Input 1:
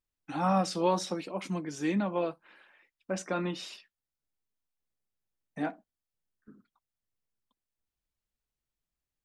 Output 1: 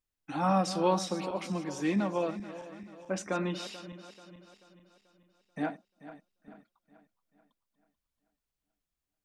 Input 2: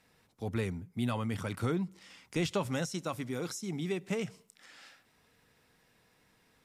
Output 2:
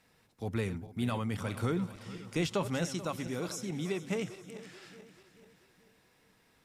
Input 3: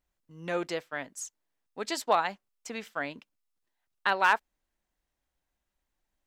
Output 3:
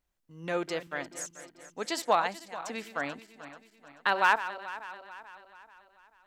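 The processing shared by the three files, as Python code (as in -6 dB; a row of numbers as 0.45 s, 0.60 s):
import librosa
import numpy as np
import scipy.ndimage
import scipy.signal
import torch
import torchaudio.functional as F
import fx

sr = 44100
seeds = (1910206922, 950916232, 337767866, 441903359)

y = fx.reverse_delay_fb(x, sr, ms=218, feedback_pct=67, wet_db=-13.0)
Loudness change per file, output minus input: 0.0 LU, 0.0 LU, -0.5 LU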